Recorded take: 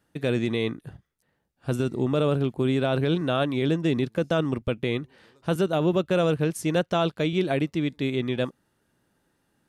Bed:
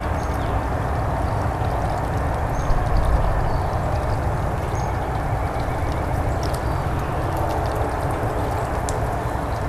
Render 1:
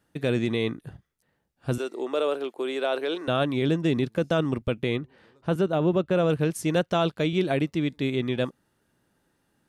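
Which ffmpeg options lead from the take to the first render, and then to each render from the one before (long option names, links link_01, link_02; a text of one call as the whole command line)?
ffmpeg -i in.wav -filter_complex "[0:a]asettb=1/sr,asplit=3[link_01][link_02][link_03];[link_01]atrim=end=1.784[link_04];[link_02]atrim=start=1.78:end=3.28,asetpts=PTS-STARTPTS,afade=type=in:duration=0.004:curve=qsin,afade=type=out:start_time=1.496:duration=0.004:curve=qsin,highpass=frequency=370:width=0.5412,highpass=frequency=370:width=1.3066[link_05];[link_03]atrim=start=3.276[link_06];[link_04][link_05]acrossfade=duration=0.004:curve1=hsin:curve2=qsin[link_07];[link_07][link_06]acrossfade=duration=0.004:curve1=qsin:curve2=hsin,asettb=1/sr,asplit=3[link_08][link_09][link_10];[link_08]atrim=end=4.964[link_11];[link_09]atrim=start=4.96:end=6.3,asetpts=PTS-STARTPTS,afade=type=in:duration=0.004:curve=qsin,afade=type=out:start_time=1.336:duration=0.004:curve=qsin,highshelf=frequency=3200:gain=-9.5[link_12];[link_10]atrim=start=6.296[link_13];[link_11][link_12]acrossfade=duration=0.004:curve1=hsin:curve2=qsin[link_14];[link_14][link_13]acrossfade=duration=0.004:curve1=qsin:curve2=hsin" out.wav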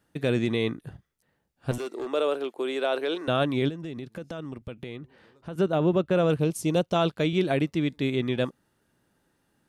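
ffmpeg -i in.wav -filter_complex "[0:a]asettb=1/sr,asplit=3[link_01][link_02][link_03];[link_01]atrim=end=1.714[link_04];[link_02]atrim=start=1.71:end=2.12,asetpts=PTS-STARTPTS,afade=type=in:duration=0.004:curve=qsin,afade=type=out:start_time=0.406:duration=0.004:curve=qsin,volume=28.5dB,asoftclip=hard,volume=-28.5dB[link_05];[link_03]atrim=start=2.116[link_06];[link_04][link_05]acrossfade=duration=0.004:curve1=hsin:curve2=qsin[link_07];[link_07][link_06]acrossfade=duration=0.004:curve1=qsin:curve2=hsin,asplit=3[link_08][link_09][link_10];[link_08]afade=type=out:start_time=3.68:duration=0.02[link_11];[link_09]acompressor=threshold=-35dB:ratio=4:attack=3.2:release=140:knee=1:detection=peak,afade=type=in:start_time=3.68:duration=0.02,afade=type=out:start_time=5.57:duration=0.02[link_12];[link_10]afade=type=in:start_time=5.57:duration=0.02[link_13];[link_11][link_12][link_13]amix=inputs=3:normalize=0,asettb=1/sr,asplit=3[link_14][link_15][link_16];[link_14]atrim=end=6.394[link_17];[link_15]atrim=start=6.39:end=6.96,asetpts=PTS-STARTPTS,afade=type=in:duration=0.004:curve=qsin,afade=type=out:start_time=0.566:duration=0.004:curve=qsin,equalizer=frequency=1700:width_type=o:width=0.59:gain=-12[link_18];[link_16]atrim=start=6.956[link_19];[link_17][link_18]acrossfade=duration=0.004:curve1=hsin:curve2=qsin[link_20];[link_20][link_19]acrossfade=duration=0.004:curve1=qsin:curve2=hsin" out.wav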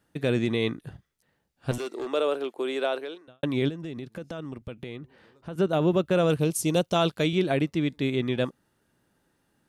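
ffmpeg -i in.wav -filter_complex "[0:a]asettb=1/sr,asplit=3[link_01][link_02][link_03];[link_01]atrim=end=0.624[link_04];[link_02]atrim=start=0.62:end=2.18,asetpts=PTS-STARTPTS,afade=type=in:duration=0.004:curve=qsin,afade=type=out:start_time=1.556:duration=0.004:curve=qsin,equalizer=frequency=4100:width=0.58:gain=3[link_05];[link_03]atrim=start=2.176[link_06];[link_04][link_05]acrossfade=duration=0.004:curve1=hsin:curve2=qsin[link_07];[link_07][link_06]acrossfade=duration=0.004:curve1=qsin:curve2=hsin,asettb=1/sr,asplit=3[link_08][link_09][link_10];[link_08]atrim=end=5.694[link_11];[link_09]atrim=start=5.69:end=7.35,asetpts=PTS-STARTPTS,afade=type=in:duration=0.004:curve=qsin,afade=type=out:start_time=1.656:duration=0.004:curve=qsin,highshelf=frequency=4100:gain=8[link_12];[link_10]atrim=start=7.346[link_13];[link_11][link_12]acrossfade=duration=0.004:curve1=hsin:curve2=qsin[link_14];[link_14][link_13]acrossfade=duration=0.004:curve1=qsin:curve2=hsin,asplit=2[link_15][link_16];[link_15]atrim=end=3.43,asetpts=PTS-STARTPTS,afade=type=out:start_time=2.86:duration=0.57:curve=qua[link_17];[link_16]atrim=start=3.43,asetpts=PTS-STARTPTS,afade=type=in:duration=0.004:curve=hsin[link_18];[link_17][link_18]concat=n=2:v=0:a=1" out.wav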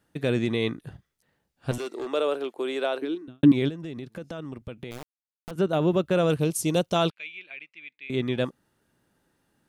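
ffmpeg -i in.wav -filter_complex "[0:a]asettb=1/sr,asplit=3[link_01][link_02][link_03];[link_01]atrim=end=3.024[link_04];[link_02]atrim=start=3.02:end=3.52,asetpts=PTS-STARTPTS,afade=type=in:duration=0.004:curve=qsin,afade=type=out:start_time=0.496:duration=0.004:curve=qsin,lowshelf=frequency=410:width_type=q:width=3:gain=9[link_05];[link_03]atrim=start=3.516[link_06];[link_04][link_05]acrossfade=duration=0.004:curve1=hsin:curve2=qsin[link_07];[link_07][link_06]acrossfade=duration=0.004:curve1=qsin:curve2=hsin,asettb=1/sr,asplit=3[link_08][link_09][link_10];[link_08]atrim=end=4.914[link_11];[link_09]atrim=start=4.91:end=5.51,asetpts=PTS-STARTPTS,afade=type=in:duration=0.004:curve=qsin,afade=type=out:start_time=0.596:duration=0.004:curve=qsin,acrusher=bits=3:dc=4:mix=0:aa=0.000001[link_12];[link_10]atrim=start=5.506[link_13];[link_11][link_12]acrossfade=duration=0.004:curve1=hsin:curve2=qsin[link_14];[link_14][link_13]acrossfade=duration=0.004:curve1=qsin:curve2=hsin,asettb=1/sr,asplit=3[link_15][link_16][link_17];[link_15]atrim=end=7.104[link_18];[link_16]atrim=start=7.1:end=8.1,asetpts=PTS-STARTPTS,afade=type=in:duration=0.004:curve=qsin,afade=type=out:start_time=0.996:duration=0.004:curve=qsin,bandpass=frequency=2400:width_type=q:width=7.5[link_19];[link_17]atrim=start=8.096[link_20];[link_18][link_19]acrossfade=duration=0.004:curve1=hsin:curve2=qsin[link_21];[link_21][link_20]acrossfade=duration=0.004:curve1=qsin:curve2=hsin" out.wav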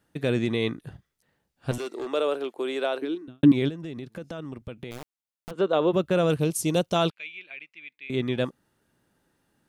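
ffmpeg -i in.wav -filter_complex "[0:a]asplit=3[link_01][link_02][link_03];[link_01]afade=type=out:start_time=5.52:duration=0.02[link_04];[link_02]highpass=280,equalizer=frequency=490:width_type=q:width=4:gain=8,equalizer=frequency=1100:width_type=q:width=4:gain=7,equalizer=frequency=3500:width_type=q:width=4:gain=5,equalizer=frequency=5800:width_type=q:width=4:gain=-10,lowpass=frequency=7100:width=0.5412,lowpass=frequency=7100:width=1.3066,afade=type=in:start_time=5.52:duration=0.02,afade=type=out:start_time=5.92:duration=0.02[link_05];[link_03]afade=type=in:start_time=5.92:duration=0.02[link_06];[link_04][link_05][link_06]amix=inputs=3:normalize=0" out.wav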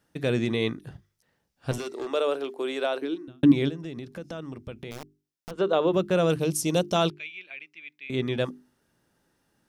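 ffmpeg -i in.wav -af "equalizer=frequency=5500:width=3.9:gain=5.5,bandreject=frequency=50:width_type=h:width=6,bandreject=frequency=100:width_type=h:width=6,bandreject=frequency=150:width_type=h:width=6,bandreject=frequency=200:width_type=h:width=6,bandreject=frequency=250:width_type=h:width=6,bandreject=frequency=300:width_type=h:width=6,bandreject=frequency=350:width_type=h:width=6,bandreject=frequency=400:width_type=h:width=6" out.wav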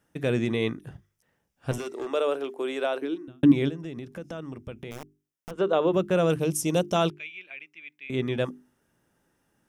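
ffmpeg -i in.wav -af "equalizer=frequency=4300:width_type=o:width=0.43:gain=-9" out.wav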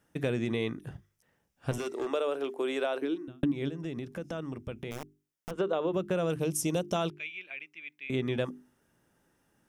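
ffmpeg -i in.wav -af "acompressor=threshold=-26dB:ratio=8" out.wav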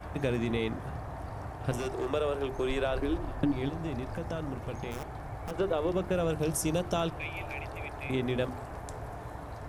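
ffmpeg -i in.wav -i bed.wav -filter_complex "[1:a]volume=-17.5dB[link_01];[0:a][link_01]amix=inputs=2:normalize=0" out.wav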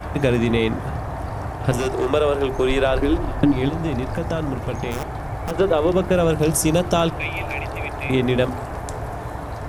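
ffmpeg -i in.wav -af "volume=11.5dB" out.wav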